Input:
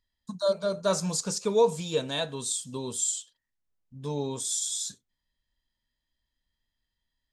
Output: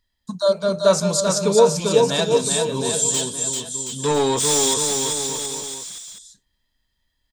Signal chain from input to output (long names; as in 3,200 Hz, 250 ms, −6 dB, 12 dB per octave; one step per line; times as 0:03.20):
0:03.14–0:04.74: mid-hump overdrive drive 21 dB, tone 5,100 Hz, clips at −17.5 dBFS
bouncing-ball delay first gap 390 ms, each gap 0.85×, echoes 5
level +7.5 dB